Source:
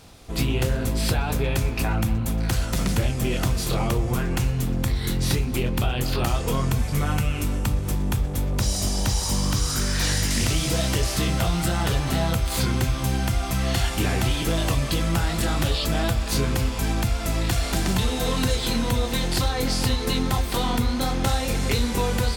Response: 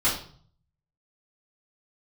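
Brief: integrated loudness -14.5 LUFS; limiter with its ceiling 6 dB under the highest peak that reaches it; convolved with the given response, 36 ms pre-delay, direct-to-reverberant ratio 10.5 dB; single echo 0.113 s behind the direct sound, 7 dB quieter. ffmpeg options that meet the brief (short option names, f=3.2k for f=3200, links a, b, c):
-filter_complex "[0:a]alimiter=limit=-15.5dB:level=0:latency=1,aecho=1:1:113:0.447,asplit=2[a][b];[1:a]atrim=start_sample=2205,adelay=36[c];[b][c]afir=irnorm=-1:irlink=0,volume=-23.5dB[d];[a][d]amix=inputs=2:normalize=0,volume=10dB"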